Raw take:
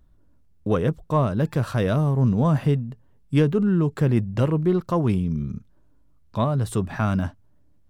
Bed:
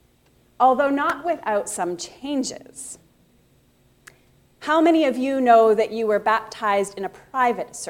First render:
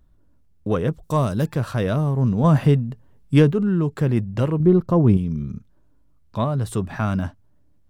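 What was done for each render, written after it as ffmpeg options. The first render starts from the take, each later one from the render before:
-filter_complex "[0:a]asplit=3[a][b][c];[a]afade=t=out:st=1.02:d=0.02[d];[b]bass=f=250:g=1,treble=f=4k:g=14,afade=t=in:st=1.02:d=0.02,afade=t=out:st=1.44:d=0.02[e];[c]afade=t=in:st=1.44:d=0.02[f];[d][e][f]amix=inputs=3:normalize=0,asettb=1/sr,asplit=3[g][h][i];[g]atrim=end=4.604[j];[h]atrim=start=4.6:end=5.17,asetpts=PTS-STARTPTS,afade=t=in:d=0.004:c=qsin,afade=t=out:st=0.566:d=0.004:c=qsin,tiltshelf=f=920:g=7[k];[i]atrim=start=5.166[l];[j][k]acrossfade=d=0.004:c1=hsin:c2=qsin[m];[m][l]acrossfade=d=0.004:c1=qsin:c2=hsin,asplit=3[n][o][p];[n]atrim=end=2.442[q];[o]atrim=start=2.438:end=3.512,asetpts=PTS-STARTPTS,volume=4.5dB[r];[p]atrim=start=3.508[s];[q][r]acrossfade=d=0.004:c1=hsin:c2=hsin[t];[t][s]acrossfade=d=0.004:c1=hsin:c2=hsin"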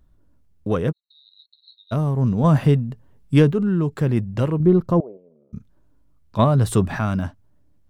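-filter_complex "[0:a]asplit=3[a][b][c];[a]afade=t=out:st=0.91:d=0.02[d];[b]asuperpass=centerf=4000:order=8:qfactor=7.1,afade=t=in:st=0.91:d=0.02,afade=t=out:st=1.91:d=0.02[e];[c]afade=t=in:st=1.91:d=0.02[f];[d][e][f]amix=inputs=3:normalize=0,asettb=1/sr,asplit=3[g][h][i];[g]atrim=end=5.004[j];[h]atrim=start=5:end=5.53,asetpts=PTS-STARTPTS,afade=t=in:d=0.004:c=qsin,afade=t=out:st=0.526:d=0.004:c=qsin,asuperpass=centerf=580:order=4:qfactor=2.7[k];[i]atrim=start=5.526[l];[j][k]acrossfade=d=0.004:c1=hsin:c2=qsin[m];[m][l]acrossfade=d=0.004:c1=qsin:c2=hsin,asplit=3[n][o][p];[n]atrim=end=6.392[q];[o]atrim=start=6.388:end=6.992,asetpts=PTS-STARTPTS,volume=6dB[r];[p]atrim=start=6.988[s];[q][r]acrossfade=d=0.004:c1=hsin:c2=hsin[t];[t][s]acrossfade=d=0.004:c1=hsin:c2=hsin"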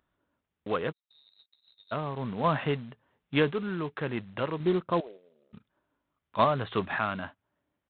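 -af "bandpass=f=1.9k:t=q:w=0.55:csg=0,aresample=8000,acrusher=bits=4:mode=log:mix=0:aa=0.000001,aresample=44100"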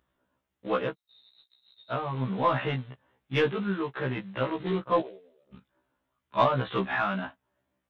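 -filter_complex "[0:a]asplit=2[a][b];[b]asoftclip=type=tanh:threshold=-19.5dB,volume=-3dB[c];[a][c]amix=inputs=2:normalize=0,afftfilt=real='re*1.73*eq(mod(b,3),0)':imag='im*1.73*eq(mod(b,3),0)':win_size=2048:overlap=0.75"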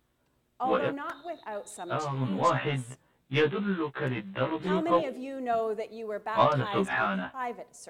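-filter_complex "[1:a]volume=-15dB[a];[0:a][a]amix=inputs=2:normalize=0"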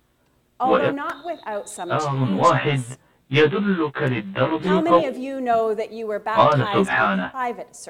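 -af "volume=9dB,alimiter=limit=-3dB:level=0:latency=1"

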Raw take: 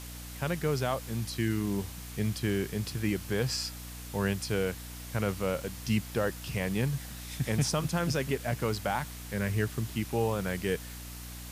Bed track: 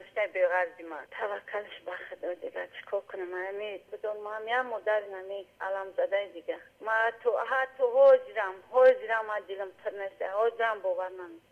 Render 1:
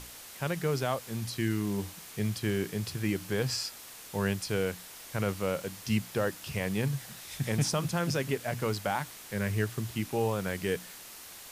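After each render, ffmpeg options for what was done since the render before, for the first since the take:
-af "bandreject=f=60:t=h:w=6,bandreject=f=120:t=h:w=6,bandreject=f=180:t=h:w=6,bandreject=f=240:t=h:w=6,bandreject=f=300:t=h:w=6"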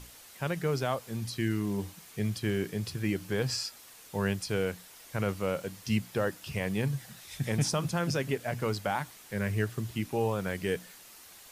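-af "afftdn=nr=6:nf=-48"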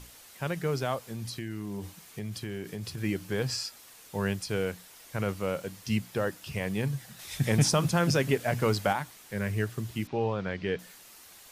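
-filter_complex "[0:a]asettb=1/sr,asplit=3[a][b][c];[a]atrim=end=1.054[d];[b]atrim=start=1.05:end=2.98,asetpts=PTS-STARTPTS,afade=t=in:d=0.004:c=qsin,afade=t=out:st=1.926:d=0.004:c=qsin,acompressor=threshold=-32dB:ratio=5:attack=3.2:release=140:knee=1:detection=peak[e];[c]atrim=start=2.976[f];[d][e]acrossfade=d=0.004:c1=hsin:c2=qsin[g];[g][f]acrossfade=d=0.004:c1=qsin:c2=hsin,asettb=1/sr,asplit=3[h][i][j];[h]atrim=end=7.194[k];[i]atrim=start=7.19:end=8.93,asetpts=PTS-STARTPTS,afade=t=in:d=0.004:c=qsin,afade=t=out:st=1.736:d=0.004:c=qsin,acontrast=24[l];[j]atrim=start=8.926[m];[k][l]acrossfade=d=0.004:c1=hsin:c2=qsin[n];[n][m]acrossfade=d=0.004:c1=qsin:c2=hsin,asettb=1/sr,asplit=3[o][p][q];[o]atrim=end=10.074[r];[p]atrim=start=10.07:end=10.79,asetpts=PTS-STARTPTS,afade=t=in:d=0.004:c=qsin,afade=t=out:st=0.716:d=0.004:c=qsin,lowpass=f=4.7k:w=0.5412,lowpass=f=4.7k:w=1.3066[s];[q]atrim=start=10.786[t];[r][s]acrossfade=d=0.004:c1=hsin:c2=qsin[u];[u][t]acrossfade=d=0.004:c1=qsin:c2=hsin"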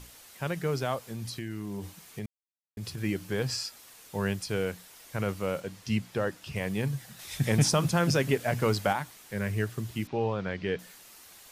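-filter_complex "[0:a]asettb=1/sr,asplit=3[a][b][c];[a]atrim=end=5.604[d];[b]atrim=start=5.6:end=6.56,asetpts=PTS-STARTPTS,afade=t=in:d=0.004:c=qsin,afade=t=out:st=0.956:d=0.004:c=qsin,highshelf=f=9.6k:g=-9.5[e];[c]atrim=start=6.556[f];[d][e]acrossfade=d=0.004:c1=hsin:c2=qsin[g];[g][f]acrossfade=d=0.004:c1=qsin:c2=hsin,asplit=3[h][i][j];[h]atrim=end=2.26,asetpts=PTS-STARTPTS,afade=t=out:st=2.256:d=0.004:c=hsin[k];[i]atrim=start=2.26:end=2.77,asetpts=PTS-STARTPTS,volume=0[l];[j]atrim=start=2.77,asetpts=PTS-STARTPTS,afade=t=in:d=0.004:c=hsin[m];[k][l][m]concat=n=3:v=0:a=1"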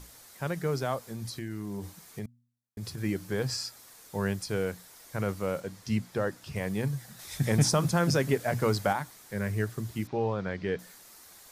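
-af "equalizer=f=2.8k:t=o:w=0.57:g=-7,bandreject=f=119.9:t=h:w=4,bandreject=f=239.8:t=h:w=4"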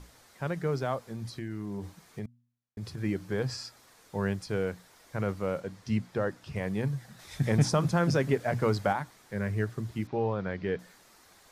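-af "aemphasis=mode=reproduction:type=50kf"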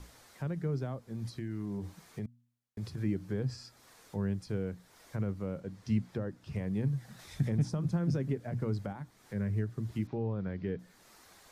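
-filter_complex "[0:a]alimiter=limit=-18.5dB:level=0:latency=1:release=361,acrossover=split=350[a][b];[b]acompressor=threshold=-51dB:ratio=2.5[c];[a][c]amix=inputs=2:normalize=0"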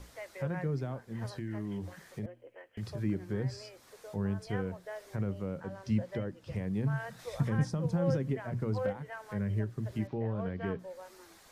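-filter_complex "[1:a]volume=-15dB[a];[0:a][a]amix=inputs=2:normalize=0"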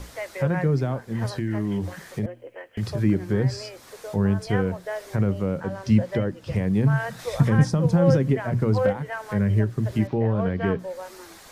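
-af "volume=11.5dB"

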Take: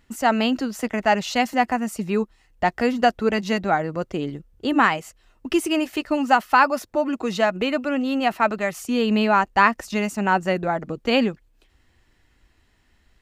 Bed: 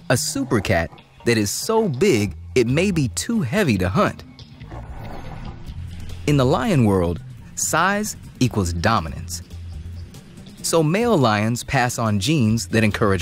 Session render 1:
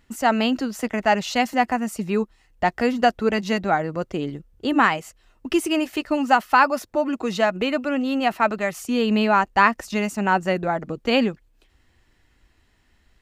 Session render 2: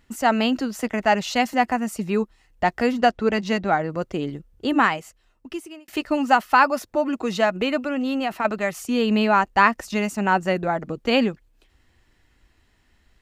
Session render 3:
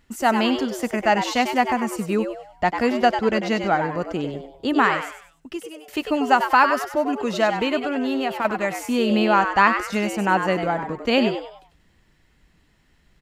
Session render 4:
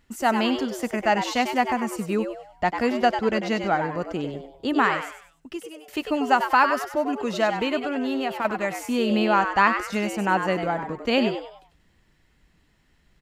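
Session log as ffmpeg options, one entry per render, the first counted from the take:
-af anull
-filter_complex "[0:a]asettb=1/sr,asplit=3[a][b][c];[a]atrim=end=2.974[d];[b]atrim=start=2.97:end=3.9,asetpts=PTS-STARTPTS,afade=t=in:d=0.004:c=qsin,afade=t=out:st=0.926:d=0.004:c=qsin,adynamicsmooth=sensitivity=3.5:basefreq=7.9k[e];[c]atrim=start=3.896[f];[d][e]acrossfade=d=0.004:c1=hsin:c2=qsin[g];[g][f]acrossfade=d=0.004:c1=qsin:c2=hsin,asettb=1/sr,asplit=3[h][i][j];[h]atrim=end=7.854[k];[i]atrim=start=7.85:end=8.45,asetpts=PTS-STARTPTS,afade=t=in:d=0.004:c=qsin,afade=t=out:st=0.596:d=0.004:c=qsin,acompressor=threshold=-20dB:ratio=4:attack=3.2:release=140:knee=1:detection=peak[l];[j]atrim=start=8.446[m];[k][l]acrossfade=d=0.004:c1=hsin:c2=qsin[n];[n][m]acrossfade=d=0.004:c1=qsin:c2=hsin,asplit=2[o][p];[o]atrim=end=5.88,asetpts=PTS-STARTPTS,afade=t=out:st=4.71:d=1.17[q];[p]atrim=start=5.88,asetpts=PTS-STARTPTS,afade=t=in:d=0.004:c=hsin[r];[q][r]concat=n=2:v=0:a=1"
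-filter_complex "[0:a]asplit=5[a][b][c][d][e];[b]adelay=97,afreqshift=130,volume=-8dB[f];[c]adelay=194,afreqshift=260,volume=-16.9dB[g];[d]adelay=291,afreqshift=390,volume=-25.7dB[h];[e]adelay=388,afreqshift=520,volume=-34.6dB[i];[a][f][g][h][i]amix=inputs=5:normalize=0"
-af "volume=-2.5dB"

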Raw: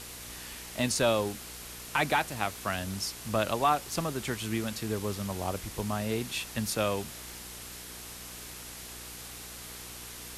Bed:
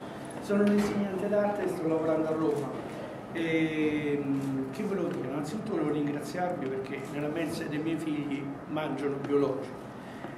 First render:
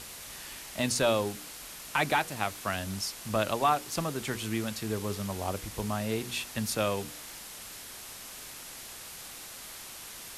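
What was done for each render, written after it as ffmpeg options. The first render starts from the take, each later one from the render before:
-af "bandreject=f=60:t=h:w=4,bandreject=f=120:t=h:w=4,bandreject=f=180:t=h:w=4,bandreject=f=240:t=h:w=4,bandreject=f=300:t=h:w=4,bandreject=f=360:t=h:w=4,bandreject=f=420:t=h:w=4,bandreject=f=480:t=h:w=4"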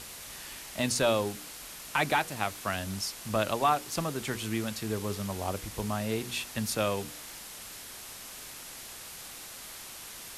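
-af anull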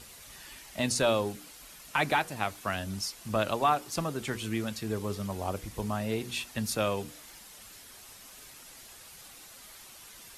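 -af "afftdn=nr=8:nf=-45"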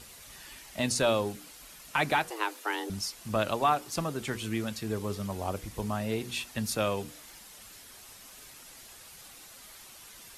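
-filter_complex "[0:a]asettb=1/sr,asplit=3[a][b][c];[a]atrim=end=2.304[d];[b]atrim=start=2.3:end=2.9,asetpts=PTS-STARTPTS,afade=t=in:d=0.004:c=qsin,afade=t=out:st=0.596:d=0.004:c=qsin,afreqshift=210[e];[c]atrim=start=2.896[f];[d][e]acrossfade=d=0.004:c1=hsin:c2=qsin[g];[g][f]acrossfade=d=0.004:c1=qsin:c2=hsin"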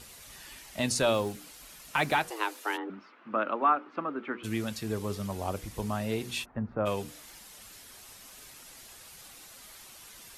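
-filter_complex "[0:a]asettb=1/sr,asplit=3[a][b][c];[a]atrim=end=1.144[d];[b]atrim=start=1.14:end=2.15,asetpts=PTS-STARTPTS,afade=t=in:d=0.004:c=qsin,afade=t=out:st=1.006:d=0.004:c=qsin,acrusher=bits=8:mode=log:mix=0:aa=0.000001[e];[c]atrim=start=2.146[f];[d][e]acrossfade=d=0.004:c1=hsin:c2=qsin[g];[g][f]acrossfade=d=0.004:c1=qsin:c2=hsin,asplit=3[h][i][j];[h]afade=t=out:st=2.76:d=0.02[k];[i]highpass=f=250:w=0.5412,highpass=f=250:w=1.3066,equalizer=f=270:t=q:w=4:g=5,equalizer=f=440:t=q:w=4:g=-3,equalizer=f=700:t=q:w=4:g=-5,equalizer=f=1.3k:t=q:w=4:g=7,equalizer=f=1.9k:t=q:w=4:g=-3,lowpass=f=2.2k:w=0.5412,lowpass=f=2.2k:w=1.3066,afade=t=in:st=2.76:d=0.02,afade=t=out:st=4.43:d=0.02[l];[j]afade=t=in:st=4.43:d=0.02[m];[k][l][m]amix=inputs=3:normalize=0,asplit=3[n][o][p];[n]afade=t=out:st=6.44:d=0.02[q];[o]lowpass=f=1.4k:w=0.5412,lowpass=f=1.4k:w=1.3066,afade=t=in:st=6.44:d=0.02,afade=t=out:st=6.85:d=0.02[r];[p]afade=t=in:st=6.85:d=0.02[s];[q][r][s]amix=inputs=3:normalize=0"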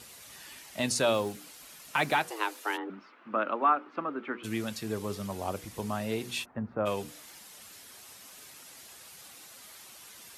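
-af "highpass=71,lowshelf=f=100:g=-6.5"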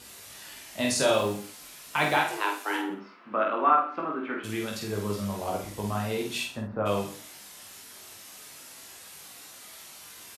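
-filter_complex "[0:a]asplit=2[a][b];[b]adelay=49,volume=-5dB[c];[a][c]amix=inputs=2:normalize=0,asplit=2[d][e];[e]aecho=0:1:20|46|79.8|123.7|180.9:0.631|0.398|0.251|0.158|0.1[f];[d][f]amix=inputs=2:normalize=0"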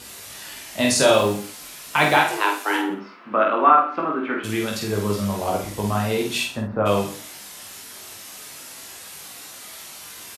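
-af "volume=7.5dB,alimiter=limit=-2dB:level=0:latency=1"

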